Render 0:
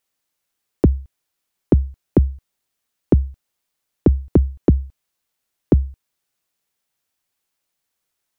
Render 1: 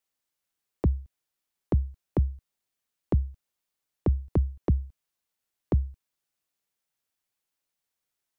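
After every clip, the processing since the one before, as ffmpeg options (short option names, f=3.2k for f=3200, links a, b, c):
-filter_complex "[0:a]acrossover=split=180|3000[a][b][c];[b]acompressor=threshold=-21dB:ratio=6[d];[a][d][c]amix=inputs=3:normalize=0,volume=-7.5dB"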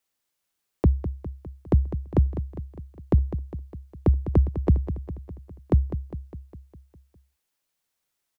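-af "aecho=1:1:203|406|609|812|1015|1218|1421:0.282|0.163|0.0948|0.055|0.0319|0.0185|0.0107,volume=4.5dB"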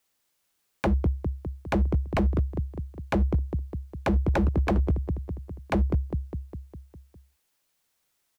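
-af "aeval=exprs='0.075*(abs(mod(val(0)/0.075+3,4)-2)-1)':c=same,volume=5.5dB"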